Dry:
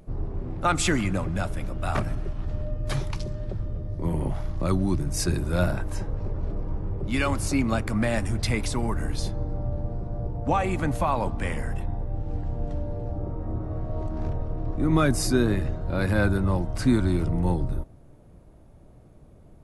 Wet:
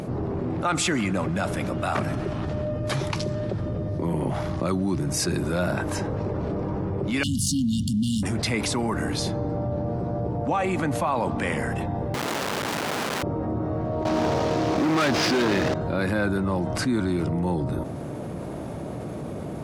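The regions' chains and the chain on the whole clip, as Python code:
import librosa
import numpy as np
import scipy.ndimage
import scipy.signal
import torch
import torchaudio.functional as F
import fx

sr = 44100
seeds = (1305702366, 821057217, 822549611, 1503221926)

y = fx.chain(x, sr, fx.leveller(passes=2),
    fx.brickwall_bandstop(low_hz=280.0, high_hz=2800.0), at=(7.23, 8.23))
y = fx.chain(y, sr, fx.curve_eq(hz=(240.0, 850.0, 1300.0, 2500.0), db=(0, -22, -7, 4)),
    fx.leveller(passes=2),
    fx.overflow_wrap(gain_db=33.0), at=(12.14, 13.23))
y = fx.chain(y, sr, fx.cvsd(bps=32000),
    fx.low_shelf(hz=220.0, db=-11.0),
    fx.leveller(passes=5), at=(14.05, 15.74))
y = scipy.signal.sosfilt(scipy.signal.butter(2, 150.0, 'highpass', fs=sr, output='sos'), y)
y = fx.high_shelf(y, sr, hz=10000.0, db=-6.5)
y = fx.env_flatten(y, sr, amount_pct=70)
y = y * 10.0 ** (-5.5 / 20.0)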